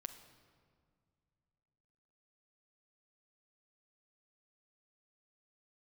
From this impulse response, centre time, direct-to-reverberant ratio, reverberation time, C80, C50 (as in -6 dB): 17 ms, 6.5 dB, 2.1 s, 11.5 dB, 10.0 dB